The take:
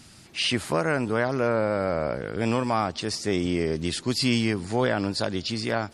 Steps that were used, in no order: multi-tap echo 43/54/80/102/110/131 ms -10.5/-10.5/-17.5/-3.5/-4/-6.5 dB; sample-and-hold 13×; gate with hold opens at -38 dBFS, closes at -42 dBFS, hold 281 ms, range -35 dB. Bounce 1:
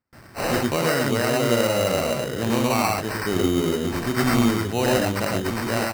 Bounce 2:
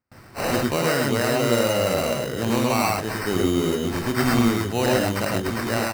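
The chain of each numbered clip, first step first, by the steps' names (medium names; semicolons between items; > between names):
multi-tap echo > sample-and-hold > gate with hold; sample-and-hold > multi-tap echo > gate with hold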